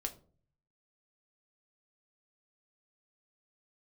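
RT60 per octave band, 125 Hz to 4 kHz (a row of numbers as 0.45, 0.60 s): 0.95, 0.60, 0.50, 0.40, 0.25, 0.25 s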